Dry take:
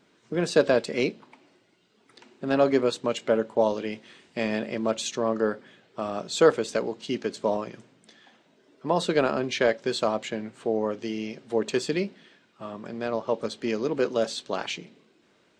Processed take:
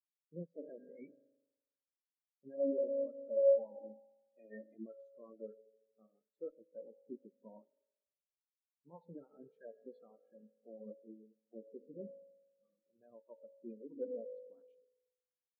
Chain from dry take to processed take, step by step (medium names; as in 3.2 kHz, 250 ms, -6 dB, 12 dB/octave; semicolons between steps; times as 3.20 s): coarse spectral quantiser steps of 30 dB; 3.75–4.75 s: steep high-pass 210 Hz 48 dB/octave; 6.07–6.72 s: valve stage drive 17 dB, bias 0.65; reverberation RT60 4.0 s, pre-delay 3 ms, DRR 5 dB; peak limiter -18.5 dBFS, peak gain reduction 10.5 dB; spectral contrast expander 4:1; trim -1.5 dB